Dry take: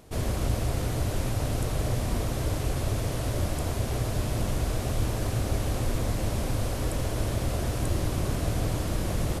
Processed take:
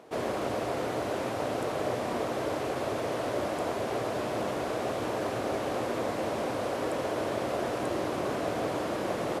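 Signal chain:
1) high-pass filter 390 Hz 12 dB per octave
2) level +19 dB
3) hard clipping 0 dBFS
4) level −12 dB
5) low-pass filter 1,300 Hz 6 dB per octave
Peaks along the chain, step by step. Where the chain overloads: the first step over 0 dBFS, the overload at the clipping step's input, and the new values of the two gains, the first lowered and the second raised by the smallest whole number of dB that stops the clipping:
−21.5, −2.5, −2.5, −14.5, −17.0 dBFS
no step passes full scale

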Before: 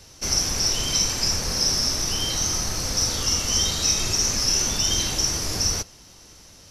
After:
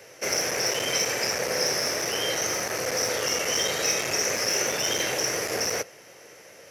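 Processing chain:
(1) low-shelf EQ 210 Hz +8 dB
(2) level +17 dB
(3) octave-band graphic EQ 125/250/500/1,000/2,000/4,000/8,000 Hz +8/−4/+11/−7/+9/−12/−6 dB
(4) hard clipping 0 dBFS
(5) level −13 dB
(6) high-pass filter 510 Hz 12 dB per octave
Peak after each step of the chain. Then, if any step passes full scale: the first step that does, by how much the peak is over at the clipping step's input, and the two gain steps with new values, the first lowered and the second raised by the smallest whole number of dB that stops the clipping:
−7.0, +10.0, +9.5, 0.0, −13.0, −10.5 dBFS
step 2, 9.5 dB
step 2 +7 dB, step 5 −3 dB

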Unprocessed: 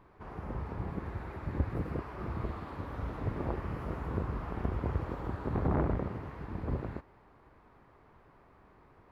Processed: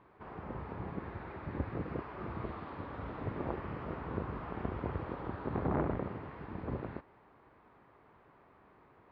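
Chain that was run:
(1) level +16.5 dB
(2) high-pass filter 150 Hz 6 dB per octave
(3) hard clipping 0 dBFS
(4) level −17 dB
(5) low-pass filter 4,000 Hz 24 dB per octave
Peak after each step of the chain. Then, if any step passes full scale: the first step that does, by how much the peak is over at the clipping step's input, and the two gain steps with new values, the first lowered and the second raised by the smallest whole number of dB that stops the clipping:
−1.0, −2.0, −2.0, −19.0, −19.0 dBFS
no step passes full scale

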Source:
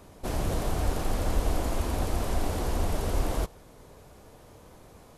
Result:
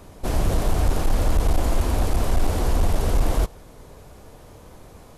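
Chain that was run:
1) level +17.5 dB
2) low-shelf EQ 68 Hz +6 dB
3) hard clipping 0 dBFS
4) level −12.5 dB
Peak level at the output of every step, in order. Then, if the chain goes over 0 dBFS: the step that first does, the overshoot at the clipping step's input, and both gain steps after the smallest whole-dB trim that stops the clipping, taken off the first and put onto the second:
+4.0, +8.0, 0.0, −12.5 dBFS
step 1, 8.0 dB
step 1 +9.5 dB, step 4 −4.5 dB

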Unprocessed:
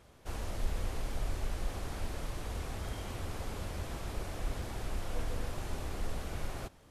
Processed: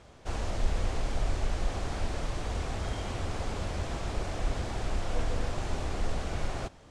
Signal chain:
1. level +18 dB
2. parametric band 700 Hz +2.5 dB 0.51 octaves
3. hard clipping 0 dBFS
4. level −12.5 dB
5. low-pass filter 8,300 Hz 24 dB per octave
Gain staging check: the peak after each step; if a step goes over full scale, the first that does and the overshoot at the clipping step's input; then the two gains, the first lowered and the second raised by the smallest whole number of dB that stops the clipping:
−2.0, −2.0, −2.0, −14.5, −14.5 dBFS
no step passes full scale

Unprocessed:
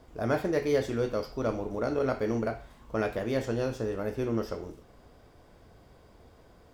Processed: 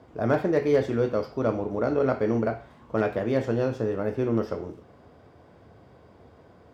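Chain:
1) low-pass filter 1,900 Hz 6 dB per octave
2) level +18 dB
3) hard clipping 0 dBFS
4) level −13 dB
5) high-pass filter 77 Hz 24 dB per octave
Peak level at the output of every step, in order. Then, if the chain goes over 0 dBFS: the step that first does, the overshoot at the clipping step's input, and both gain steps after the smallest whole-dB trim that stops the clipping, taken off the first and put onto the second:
−15.0, +3.0, 0.0, −13.0, −10.5 dBFS
step 2, 3.0 dB
step 2 +15 dB, step 4 −10 dB

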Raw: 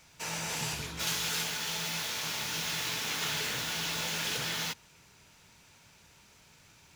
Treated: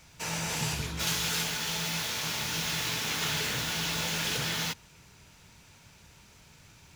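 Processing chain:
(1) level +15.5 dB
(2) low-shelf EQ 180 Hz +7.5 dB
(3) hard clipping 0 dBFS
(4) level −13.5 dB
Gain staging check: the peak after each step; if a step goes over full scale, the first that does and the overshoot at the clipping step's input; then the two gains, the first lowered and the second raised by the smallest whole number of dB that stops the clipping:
−3.5, −3.5, −3.5, −17.0 dBFS
no step passes full scale

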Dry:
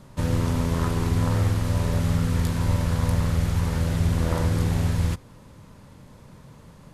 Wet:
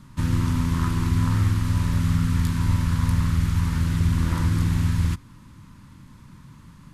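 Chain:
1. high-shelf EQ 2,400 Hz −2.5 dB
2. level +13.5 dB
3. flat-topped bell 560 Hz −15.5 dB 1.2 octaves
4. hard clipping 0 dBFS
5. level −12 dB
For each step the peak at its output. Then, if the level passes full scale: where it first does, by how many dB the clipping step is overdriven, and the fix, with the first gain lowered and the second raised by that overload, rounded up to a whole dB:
−10.0, +3.5, +3.0, 0.0, −12.0 dBFS
step 2, 3.0 dB
step 2 +10.5 dB, step 5 −9 dB

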